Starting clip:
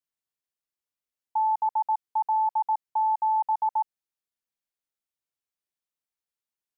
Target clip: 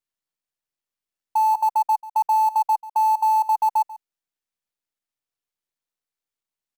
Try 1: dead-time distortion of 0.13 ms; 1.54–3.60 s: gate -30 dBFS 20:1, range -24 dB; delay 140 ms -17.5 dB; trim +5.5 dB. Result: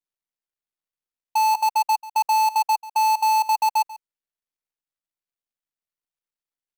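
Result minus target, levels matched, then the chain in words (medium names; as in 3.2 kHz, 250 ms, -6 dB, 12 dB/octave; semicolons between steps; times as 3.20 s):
dead-time distortion: distortion +14 dB
dead-time distortion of 0.037 ms; 1.54–3.60 s: gate -30 dBFS 20:1, range -24 dB; delay 140 ms -17.5 dB; trim +5.5 dB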